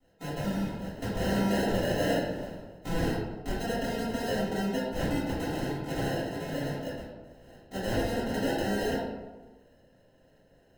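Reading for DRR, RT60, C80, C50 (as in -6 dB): -11.5 dB, 1.2 s, 2.5 dB, 0.0 dB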